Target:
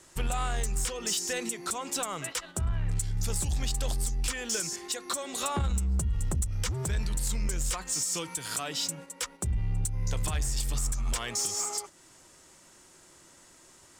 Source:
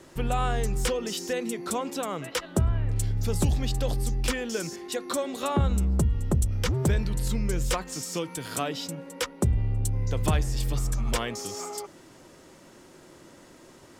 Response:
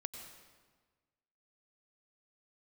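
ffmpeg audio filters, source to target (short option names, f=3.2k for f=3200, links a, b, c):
-af "agate=range=-8dB:threshold=-40dB:ratio=16:detection=peak,equalizer=f=125:t=o:w=1:g=-4,equalizer=f=250:t=o:w=1:g=-7,equalizer=f=500:t=o:w=1:g=-6,equalizer=f=8k:t=o:w=1:g=10,alimiter=limit=-22dB:level=0:latency=1:release=274,asoftclip=type=tanh:threshold=-25.5dB,volume=4dB"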